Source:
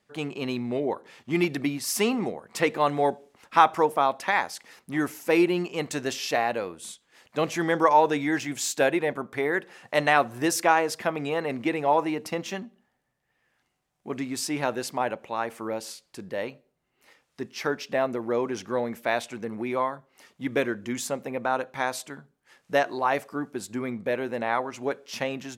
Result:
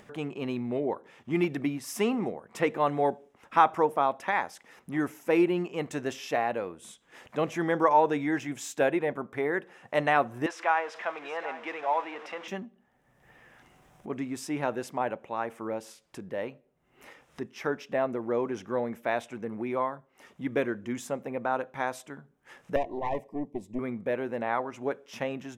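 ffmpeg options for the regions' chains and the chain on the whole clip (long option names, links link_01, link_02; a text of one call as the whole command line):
ffmpeg -i in.wav -filter_complex "[0:a]asettb=1/sr,asplit=3[link_01][link_02][link_03];[link_01]atrim=end=10.464[link_04];[link_02]atrim=start=10.46:end=12.48,asetpts=PTS-STARTPTS,afade=type=in:duration=0.004:curve=qsin,afade=type=out:start_time=2.016:duration=0.004:curve=qsin,aeval=exprs='val(0)+0.5*0.0282*sgn(val(0))':channel_layout=same,highpass=790,lowpass=3600,aecho=1:1:774:0.188,atrim=end_sample=89082[link_05];[link_03]atrim=start=12.476[link_06];[link_04][link_05]acrossfade=duration=0.004:curve1=hsin:curve2=qsin[link_07];[link_07][link_06]acrossfade=duration=0.004:curve1=qsin:curve2=hsin,asettb=1/sr,asplit=3[link_08][link_09][link_10];[link_08]atrim=end=22.764[link_11];[link_09]atrim=start=22.76:end=23.79,asetpts=PTS-STARTPTS,afade=type=in:duration=0.004:curve=qsin,afade=type=out:start_time=1.026:duration=0.004:curve=qsin,tiltshelf=frequency=1100:gain=6,aeval=exprs='(tanh(10*val(0)+0.8)-tanh(0.8))/10':channel_layout=same,asuperstop=centerf=1400:order=12:qfactor=2[link_12];[link_10]atrim=start=23.786[link_13];[link_11][link_12]acrossfade=duration=0.004:curve1=hsin:curve2=qsin[link_14];[link_14][link_13]acrossfade=duration=0.004:curve1=qsin:curve2=hsin,highshelf=frequency=2700:gain=-8.5,acompressor=mode=upward:threshold=-37dB:ratio=2.5,equalizer=frequency=4400:width=5.3:gain=-9,volume=-2dB" out.wav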